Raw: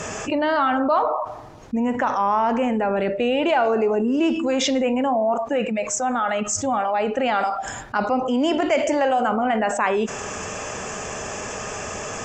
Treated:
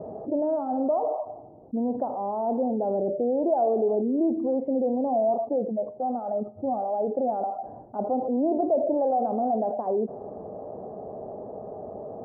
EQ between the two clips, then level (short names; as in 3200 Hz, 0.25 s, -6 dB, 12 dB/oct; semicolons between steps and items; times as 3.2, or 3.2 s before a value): HPF 320 Hz 6 dB/oct; Chebyshev low-pass 730 Hz, order 4; air absorption 330 m; 0.0 dB